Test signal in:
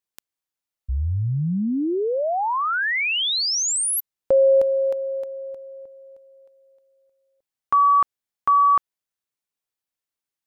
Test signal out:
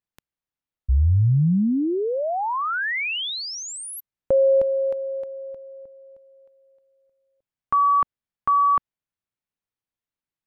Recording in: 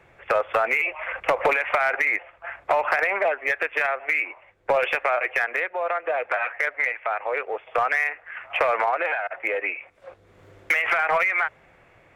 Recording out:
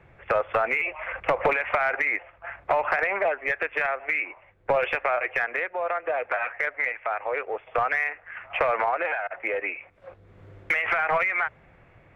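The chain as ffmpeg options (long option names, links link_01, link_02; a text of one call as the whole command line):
ffmpeg -i in.wav -af "bass=frequency=250:gain=8,treble=frequency=4000:gain=-10,volume=-2dB" out.wav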